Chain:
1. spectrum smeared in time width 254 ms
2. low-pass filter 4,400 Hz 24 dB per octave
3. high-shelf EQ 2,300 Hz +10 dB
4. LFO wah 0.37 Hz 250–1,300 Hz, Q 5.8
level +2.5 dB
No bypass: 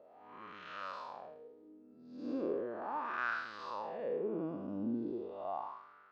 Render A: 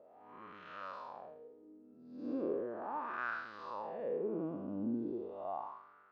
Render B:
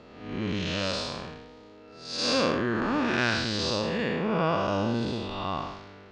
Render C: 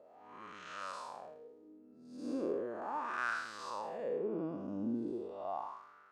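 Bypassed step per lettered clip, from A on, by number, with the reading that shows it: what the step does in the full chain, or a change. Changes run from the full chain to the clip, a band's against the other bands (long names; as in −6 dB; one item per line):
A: 3, 4 kHz band −6.5 dB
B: 4, 4 kHz band +15.5 dB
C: 2, 4 kHz band +2.0 dB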